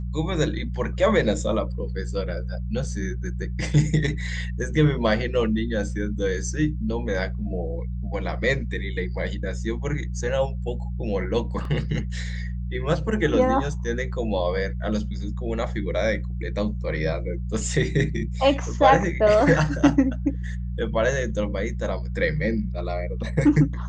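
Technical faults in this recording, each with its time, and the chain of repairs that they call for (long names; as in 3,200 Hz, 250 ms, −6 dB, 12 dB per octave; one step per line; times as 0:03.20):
mains hum 60 Hz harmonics 3 −29 dBFS
0:11.65: drop-out 2.4 ms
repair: hum removal 60 Hz, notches 3
repair the gap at 0:11.65, 2.4 ms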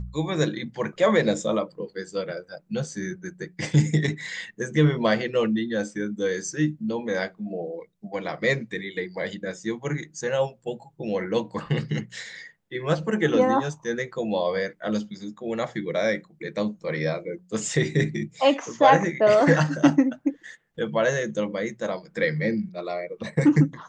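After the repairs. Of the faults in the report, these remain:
none of them is left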